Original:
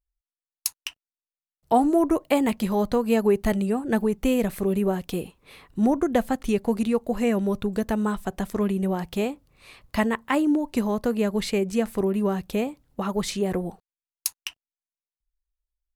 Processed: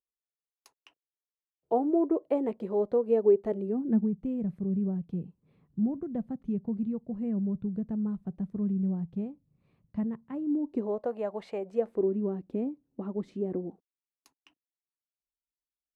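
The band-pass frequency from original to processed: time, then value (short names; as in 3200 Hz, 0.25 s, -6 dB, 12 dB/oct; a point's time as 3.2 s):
band-pass, Q 2.6
3.52 s 430 Hz
4.16 s 160 Hz
10.41 s 160 Hz
11.12 s 710 Hz
11.62 s 710 Hz
12.15 s 290 Hz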